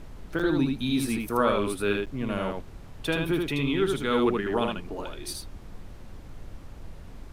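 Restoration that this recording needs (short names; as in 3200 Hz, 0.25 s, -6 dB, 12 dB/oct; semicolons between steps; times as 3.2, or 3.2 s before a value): interpolate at 0.39/2.06, 6.6 ms; noise print and reduce 30 dB; inverse comb 78 ms -3.5 dB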